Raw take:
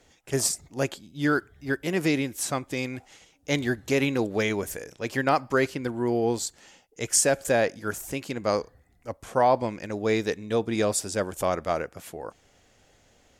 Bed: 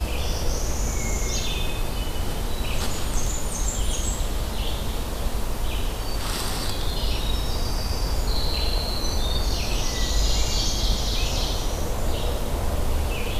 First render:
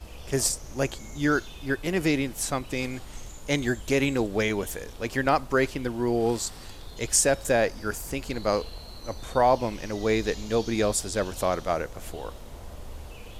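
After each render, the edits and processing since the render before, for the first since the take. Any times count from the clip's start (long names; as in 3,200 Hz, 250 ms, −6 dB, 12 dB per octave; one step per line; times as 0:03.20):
mix in bed −16.5 dB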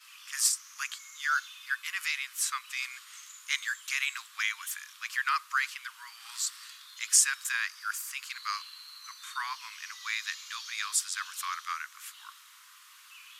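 Butterworth high-pass 1,100 Hz 72 dB per octave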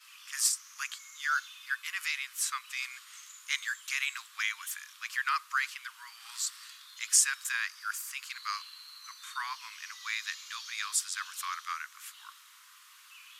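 level −1.5 dB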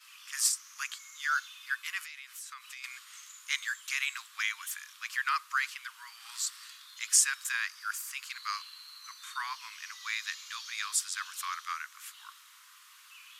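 0:02.02–0:02.84: downward compressor 8 to 1, threshold −41 dBFS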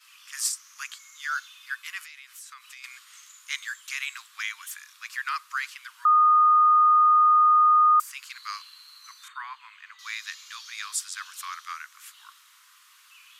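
0:04.77–0:05.28: notch filter 3,100 Hz, Q 13
0:06.05–0:08.00: beep over 1,230 Hz −14.5 dBFS
0:09.28–0:09.99: moving average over 8 samples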